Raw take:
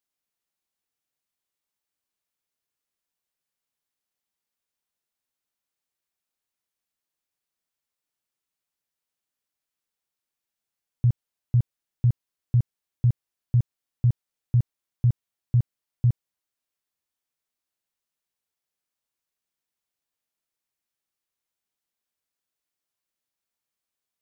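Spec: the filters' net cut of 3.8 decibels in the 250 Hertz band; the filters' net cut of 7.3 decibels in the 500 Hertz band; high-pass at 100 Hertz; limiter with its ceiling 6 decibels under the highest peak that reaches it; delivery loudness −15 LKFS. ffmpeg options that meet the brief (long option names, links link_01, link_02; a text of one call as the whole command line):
ffmpeg -i in.wav -af "highpass=100,equalizer=frequency=250:width_type=o:gain=-8,equalizer=frequency=500:width_type=o:gain=-6.5,volume=22dB,alimiter=limit=-1.5dB:level=0:latency=1" out.wav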